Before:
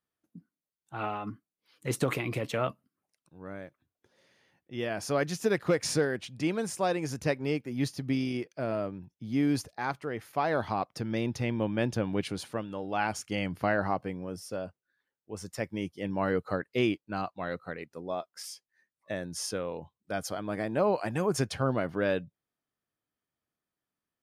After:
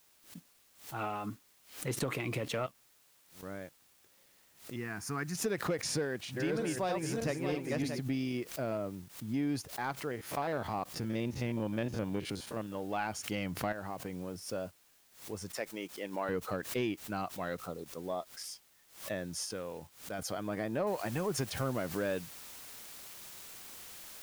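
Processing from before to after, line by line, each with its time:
2.66–3.43 s: pre-emphasis filter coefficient 0.8
4.76–5.35 s: static phaser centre 1.4 kHz, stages 4
5.95–7.99 s: backward echo that repeats 314 ms, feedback 43%, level -2.5 dB
8.77–9.34 s: tape spacing loss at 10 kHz 25 dB
10.11–12.75 s: spectrogram pixelated in time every 50 ms
13.72–14.46 s: compression, threshold -33 dBFS
15.54–16.29 s: high-pass 380 Hz
17.67–18.25 s: brick-wall FIR band-stop 1.4–3.2 kHz
19.44–20.19 s: compression 1.5:1, threshold -42 dBFS
20.87 s: noise floor step -60 dB -47 dB
whole clip: compression 2:1, threshold -30 dBFS; waveshaping leveller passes 1; swell ahead of each attack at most 130 dB/s; trim -5.5 dB

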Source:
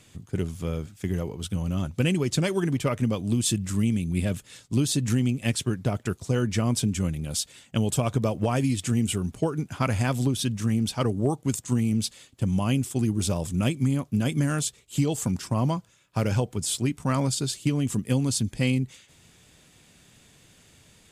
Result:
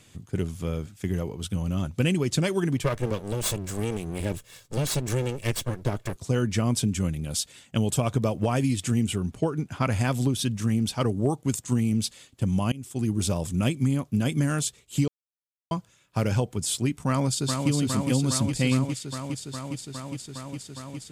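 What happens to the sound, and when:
2.83–6.16 s: comb filter that takes the minimum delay 1.8 ms
9.03–9.92 s: treble shelf 6.5 kHz -6.5 dB
12.72–13.13 s: fade in, from -23.5 dB
15.08–15.71 s: mute
17.07–17.70 s: echo throw 410 ms, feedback 85%, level -4.5 dB

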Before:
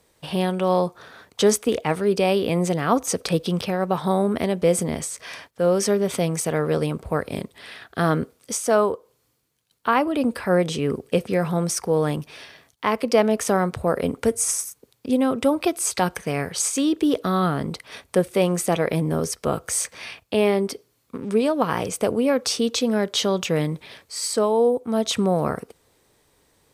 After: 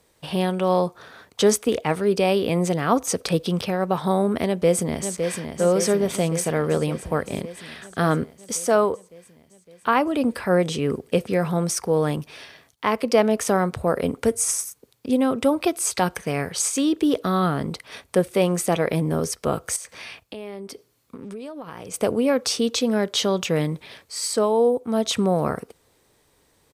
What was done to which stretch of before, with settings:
4.46–5.49 s: echo throw 560 ms, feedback 70%, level -6.5 dB
19.76–21.94 s: compression, threshold -33 dBFS

